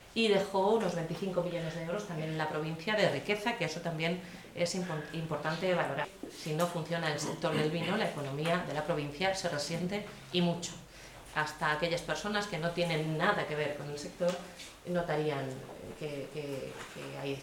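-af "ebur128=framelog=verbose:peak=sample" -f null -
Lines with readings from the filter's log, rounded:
Integrated loudness:
  I:         -33.8 LUFS
  Threshold: -44.0 LUFS
Loudness range:
  LRA:         2.1 LU
  Threshold: -54.1 LUFS
  LRA low:   -35.1 LUFS
  LRA high:  -33.0 LUFS
Sample peak:
  Peak:      -14.7 dBFS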